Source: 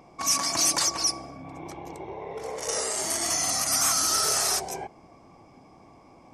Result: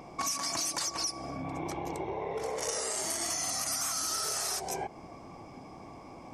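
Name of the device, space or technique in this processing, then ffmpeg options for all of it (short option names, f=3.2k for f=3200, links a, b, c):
serial compression, leveller first: -af "acompressor=threshold=-27dB:ratio=2,acompressor=threshold=-37dB:ratio=4,volume=5dB"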